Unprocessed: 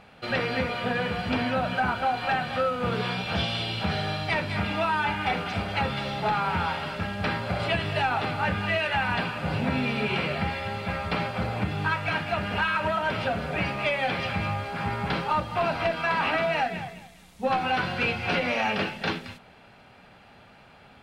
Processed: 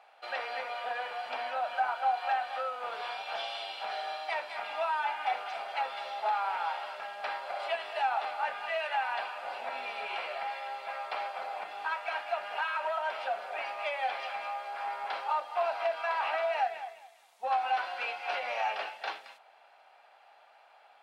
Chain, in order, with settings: ladder high-pass 620 Hz, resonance 50%

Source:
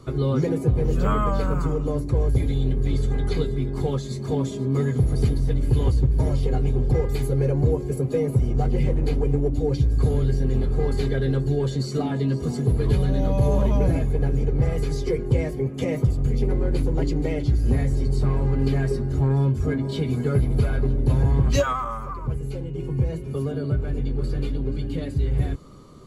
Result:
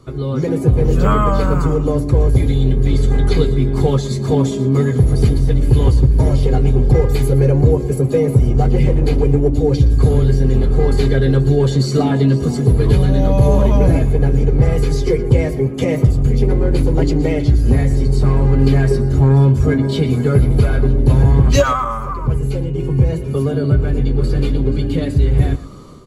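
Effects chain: AGC gain up to 11.5 dB; echo 0.118 s -16 dB

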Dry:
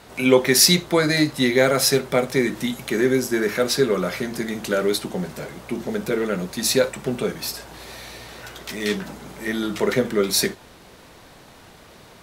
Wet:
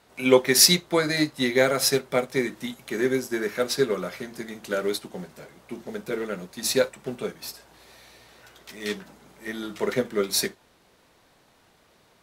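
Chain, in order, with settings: low shelf 200 Hz -4.5 dB; upward expander 1.5:1, over -36 dBFS

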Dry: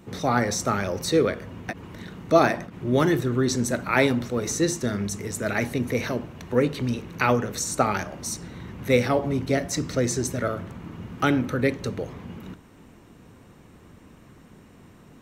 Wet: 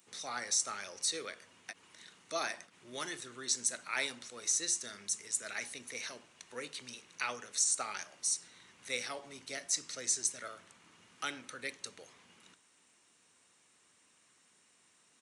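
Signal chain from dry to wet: downsampling 22050 Hz; differentiator

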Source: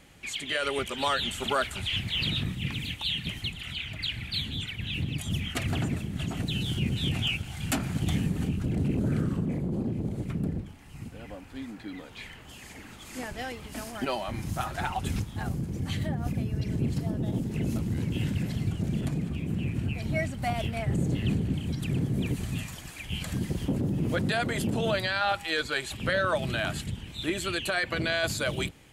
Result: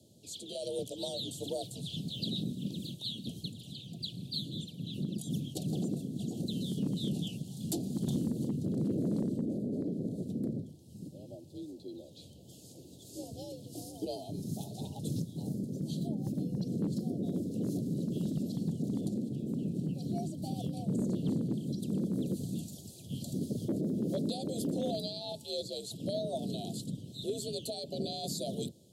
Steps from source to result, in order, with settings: frequency shift +61 Hz; elliptic band-stop 610–3900 Hz, stop band 50 dB; one-sided clip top -22 dBFS; gain -4 dB

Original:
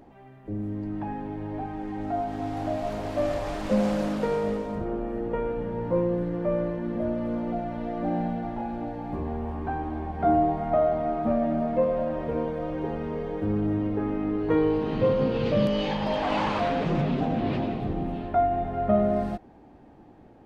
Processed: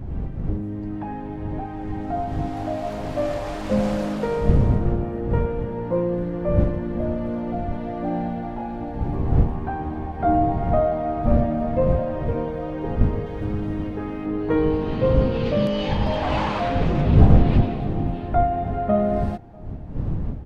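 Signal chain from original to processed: wind noise 120 Hz -26 dBFS; 13.26–14.26 tilt shelf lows -4.5 dB, about 1400 Hz; outdoor echo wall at 110 m, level -27 dB; gain +2 dB

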